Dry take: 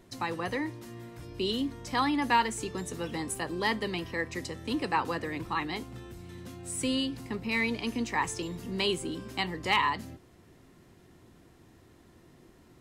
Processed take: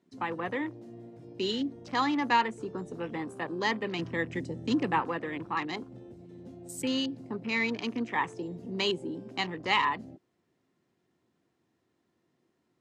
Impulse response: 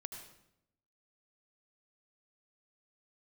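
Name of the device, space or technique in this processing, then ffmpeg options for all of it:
over-cleaned archive recording: -filter_complex "[0:a]highpass=150,lowpass=7800,afwtdn=0.00794,asettb=1/sr,asplit=3[link_01][link_02][link_03];[link_01]atrim=end=3.994[link_04];[link_02]atrim=start=3.99:end=5,asetpts=PTS-STARTPTS,afade=type=in:duration=0.004:curve=qsin,afade=type=out:start_time=1.006:duration=0.004:curve=qsin,equalizer=frequency=125:width_type=o:width=1:gain=10,equalizer=frequency=250:width_type=o:width=1:gain=4,equalizer=frequency=8000:width_type=o:width=1:gain=6[link_05];[link_03]atrim=start=4.996[link_06];[link_04][link_05]acrossfade=duration=0.004:curve1=hsin:curve2=qsin[link_07];[link_07][link_06]acrossfade=duration=0.004:curve1=qsin:curve2=hsin"

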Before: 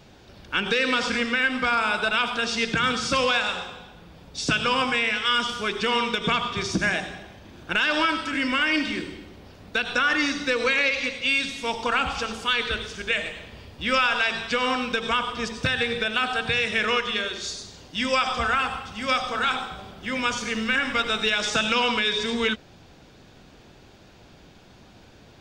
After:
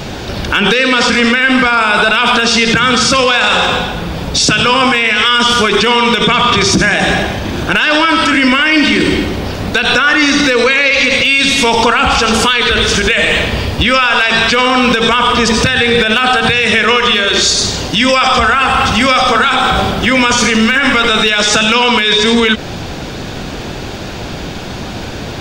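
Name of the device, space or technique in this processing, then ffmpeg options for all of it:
loud club master: -af "acompressor=threshold=-26dB:ratio=2.5,asoftclip=type=hard:threshold=-17.5dB,alimiter=level_in=28.5dB:limit=-1dB:release=50:level=0:latency=1,volume=-1dB"

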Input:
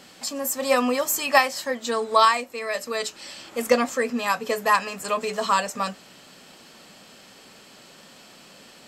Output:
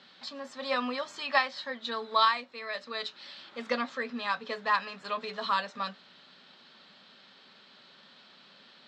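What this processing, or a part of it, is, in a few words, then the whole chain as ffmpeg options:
kitchen radio: -af "highpass=190,equalizer=frequency=310:width_type=q:width=4:gain=-8,equalizer=frequency=480:width_type=q:width=4:gain=-6,equalizer=frequency=710:width_type=q:width=4:gain=-5,equalizer=frequency=1500:width_type=q:width=4:gain=3,equalizer=frequency=2600:width_type=q:width=4:gain=-3,equalizer=frequency=3800:width_type=q:width=4:gain=9,lowpass=frequency=4300:width=0.5412,lowpass=frequency=4300:width=1.3066,volume=-7dB"

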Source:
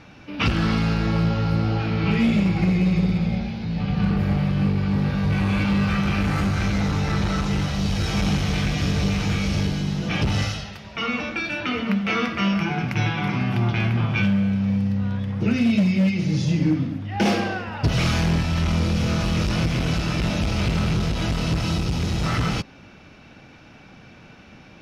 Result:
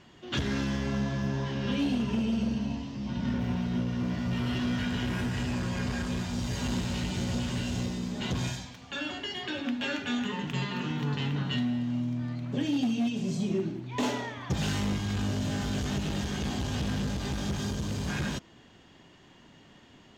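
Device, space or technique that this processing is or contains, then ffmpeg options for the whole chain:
nightcore: -af "asetrate=54243,aresample=44100,volume=-9dB"

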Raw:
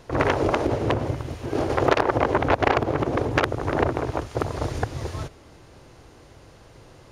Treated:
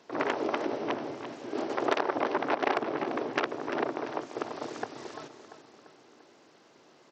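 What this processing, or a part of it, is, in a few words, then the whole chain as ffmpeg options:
Bluetooth headset: -af "highpass=frequency=210:width=0.5412,highpass=frequency=210:width=1.3066,highshelf=frequency=9100:gain=3.5,bandreject=frequency=510:width=12,aecho=1:1:343|686|1029|1372|1715:0.282|0.144|0.0733|0.0374|0.0191,aresample=16000,aresample=44100,volume=-7.5dB" -ar 32000 -c:a sbc -b:a 64k

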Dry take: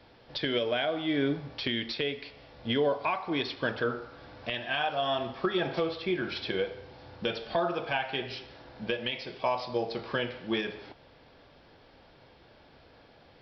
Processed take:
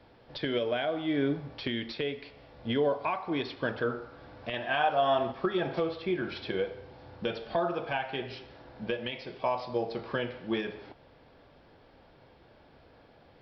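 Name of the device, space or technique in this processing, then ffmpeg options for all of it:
behind a face mask: -filter_complex "[0:a]highshelf=frequency=2400:gain=-8,asettb=1/sr,asplit=3[link_01][link_02][link_03];[link_01]atrim=end=4.534[link_04];[link_02]atrim=start=4.53:end=5.32,asetpts=PTS-STARTPTS,afade=type=in:duration=0.004:curve=qsin,afade=type=out:start_time=0.786:duration=0.004:curve=qsin,equalizer=frequency=860:width_type=o:width=2.7:gain=5.5[link_05];[link_03]atrim=start=5.316[link_06];[link_04][link_05]acrossfade=duration=0.004:curve1=hsin:curve2=qsin[link_07];[link_07][link_06]acrossfade=duration=0.004:curve1=qsin:curve2=hsin"

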